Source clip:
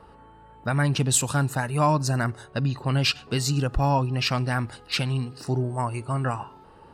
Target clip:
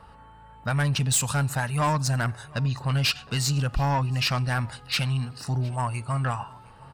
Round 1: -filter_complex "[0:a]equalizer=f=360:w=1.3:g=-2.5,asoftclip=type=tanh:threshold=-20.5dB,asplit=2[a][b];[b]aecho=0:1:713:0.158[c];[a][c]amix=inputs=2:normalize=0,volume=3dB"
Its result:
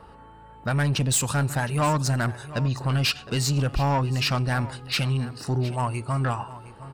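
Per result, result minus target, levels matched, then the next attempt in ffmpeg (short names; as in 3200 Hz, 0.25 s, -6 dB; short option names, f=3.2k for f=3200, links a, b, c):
echo-to-direct +8 dB; 500 Hz band +3.0 dB
-filter_complex "[0:a]equalizer=f=360:w=1.3:g=-2.5,asoftclip=type=tanh:threshold=-20.5dB,asplit=2[a][b];[b]aecho=0:1:713:0.0631[c];[a][c]amix=inputs=2:normalize=0,volume=3dB"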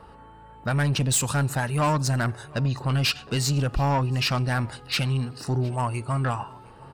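500 Hz band +3.0 dB
-filter_complex "[0:a]equalizer=f=360:w=1.3:g=-12.5,asoftclip=type=tanh:threshold=-20.5dB,asplit=2[a][b];[b]aecho=0:1:713:0.0631[c];[a][c]amix=inputs=2:normalize=0,volume=3dB"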